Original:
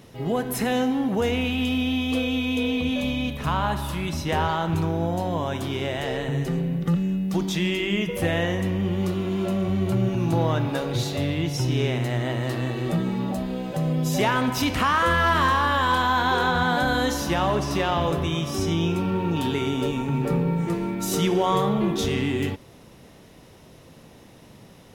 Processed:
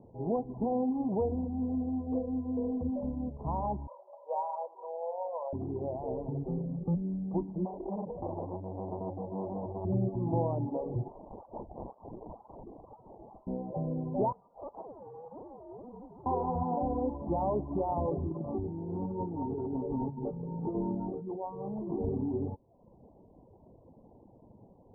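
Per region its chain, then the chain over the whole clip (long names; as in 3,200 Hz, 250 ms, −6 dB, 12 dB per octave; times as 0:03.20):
0:03.87–0:05.53: Chebyshev band-pass filter 510–8,100 Hz, order 5 + comb filter 2 ms, depth 32%
0:07.65–0:09.85: single-tap delay 84 ms −6 dB + saturating transformer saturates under 1,700 Hz
0:11.08–0:13.47: high-pass filter 1,100 Hz 24 dB per octave + sample-and-hold swept by an LFO 20× 2 Hz
0:14.32–0:16.26: voice inversion scrambler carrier 3,500 Hz + spectral tilt +2.5 dB per octave
0:18.30–0:21.93: parametric band 1,400 Hz +5 dB 0.45 octaves + compressor whose output falls as the input rises −27 dBFS
whole clip: Butterworth low-pass 960 Hz 72 dB per octave; parametric band 150 Hz −7 dB 0.25 octaves; reverb reduction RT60 0.78 s; level −5 dB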